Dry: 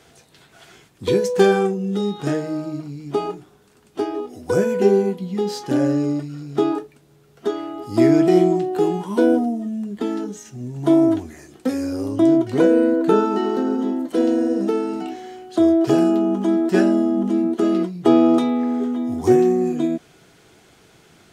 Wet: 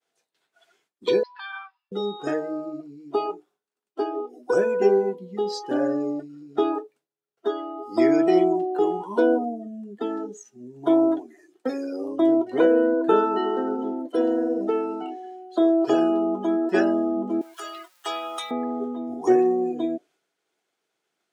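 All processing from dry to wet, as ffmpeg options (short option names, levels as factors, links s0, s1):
-filter_complex "[0:a]asettb=1/sr,asplit=3[s0][s1][s2];[s0]atrim=end=1.234[s3];[s1]atrim=start=1.23:end=1.92,asetpts=PTS-STARTPTS,afade=t=in:d=0.004:c=qsin,afade=t=out:st=0.686:d=0.004:c=qsin,acompressor=threshold=0.1:ratio=4:attack=3.2:release=140:knee=1:detection=peak,asuperpass=centerf=2100:order=20:qfactor=0.52[s4];[s2]atrim=start=1.916[s5];[s3][s4]acrossfade=d=0.004:c1=hsin:c2=qsin[s6];[s6][s5]acrossfade=d=0.004:c1=qsin:c2=hsin,asettb=1/sr,asplit=3[s7][s8][s9];[s7]atrim=end=17.414[s10];[s8]atrim=start=17.41:end=18.51,asetpts=PTS-STARTPTS,afade=t=in:d=0.004:c=qsin,afade=t=out:st=1.096:d=0.004:c=qsin,aeval=exprs='val(0)+0.5*0.0316*sgn(val(0))':c=same,highpass=1300,highshelf=f=6900:g=12[s11];[s9]atrim=start=18.506[s12];[s10][s11]acrossfade=d=0.004:c1=hsin:c2=qsin[s13];[s13][s12]acrossfade=d=0.004:c1=qsin:c2=hsin,highpass=390,agate=range=0.0224:threshold=0.00398:ratio=3:detection=peak,afftdn=nr=19:nf=-35"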